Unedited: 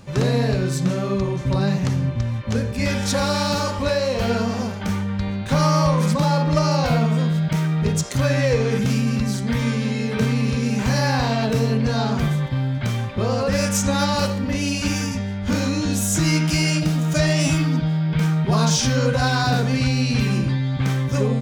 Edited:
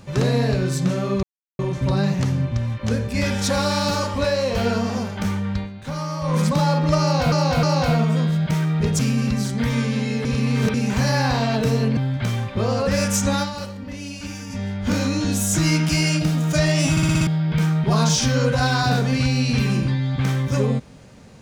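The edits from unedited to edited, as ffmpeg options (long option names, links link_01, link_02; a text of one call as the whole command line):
ffmpeg -i in.wav -filter_complex "[0:a]asplit=18[link_01][link_02][link_03][link_04][link_05][link_06][link_07][link_08][link_09][link_10][link_11][link_12][link_13][link_14][link_15][link_16][link_17][link_18];[link_01]atrim=end=1.23,asetpts=PTS-STARTPTS,afade=type=out:start_time=1.226:duration=0.004:curve=hsin,apad=pad_dur=0.36[link_19];[link_02]atrim=start=1.23:end=5.34,asetpts=PTS-STARTPTS,afade=type=in:duration=0.004:curve=hsin,afade=type=out:start_time=3.97:duration=0.14:silence=0.316228[link_20];[link_03]atrim=start=5.34:end=5.86,asetpts=PTS-STARTPTS,volume=-10dB[link_21];[link_04]atrim=start=5.86:end=6.962,asetpts=PTS-STARTPTS,afade=type=in:duration=0.14:silence=0.316228[link_22];[link_05]atrim=start=6.648:end=6.962[link_23];[link_06]atrim=start=6.648:end=8.012[link_24];[link_07]atrim=start=8.878:end=10.142[link_25];[link_08]atrim=start=10.138:end=10.632,asetpts=PTS-STARTPTS,areverse[link_26];[link_09]atrim=start=10.628:end=11.862[link_27];[link_10]atrim=start=12.578:end=14.12,asetpts=PTS-STARTPTS,afade=type=out:start_time=1.372:duration=0.17:silence=0.316228[link_28];[link_11]atrim=start=14.12:end=15.08,asetpts=PTS-STARTPTS,volume=-10dB[link_29];[link_12]atrim=start=15.08:end=17.582,asetpts=PTS-STARTPTS,afade=type=in:duration=0.17:silence=0.316228[link_30];[link_13]atrim=start=17.518:end=17.582[link_31];[link_14]atrim=start=17.518:end=17.582[link_32];[link_15]atrim=start=17.518:end=17.582[link_33];[link_16]atrim=start=17.518:end=17.582[link_34];[link_17]atrim=start=17.518:end=17.582[link_35];[link_18]atrim=start=17.878[link_36];[link_19][link_20][link_21][link_22]concat=n=4:v=0:a=1[link_37];[link_37][link_23]acrossfade=duration=0.004:curve1=hsin:curve2=hsin[link_38];[link_38][link_24]acrossfade=duration=0.004:curve1=hsin:curve2=hsin[link_39];[link_39][link_25]acrossfade=duration=0.004:curve1=hsin:curve2=hsin[link_40];[link_40][link_26]acrossfade=duration=0.004:curve1=hsin:curve2=hsin[link_41];[link_41][link_27]acrossfade=duration=0.004:curve1=hsin:curve2=hsin[link_42];[link_28][link_29][link_30]concat=n=3:v=0:a=1[link_43];[link_42][link_43]acrossfade=duration=0.004:curve1=hsin:curve2=hsin[link_44];[link_44][link_31]acrossfade=duration=0.004:curve1=hsin:curve2=hsin[link_45];[link_45][link_32]acrossfade=duration=0.004:curve1=hsin:curve2=hsin[link_46];[link_46][link_33]acrossfade=duration=0.004:curve1=hsin:curve2=hsin[link_47];[link_47][link_34]acrossfade=duration=0.004:curve1=hsin:curve2=hsin[link_48];[link_48][link_35]acrossfade=duration=0.004:curve1=hsin:curve2=hsin[link_49];[link_49][link_36]acrossfade=duration=0.004:curve1=hsin:curve2=hsin" out.wav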